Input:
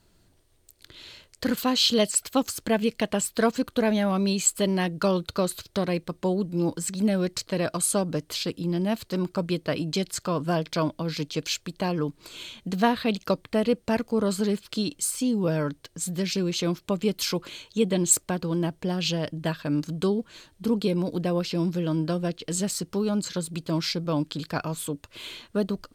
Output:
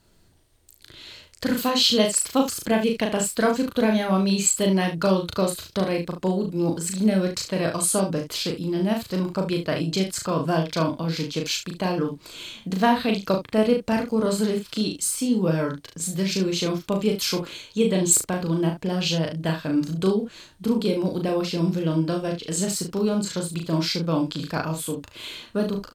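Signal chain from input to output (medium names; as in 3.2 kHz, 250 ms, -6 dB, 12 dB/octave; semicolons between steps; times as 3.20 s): early reflections 37 ms -3.5 dB, 72 ms -10.5 dB; trim +1 dB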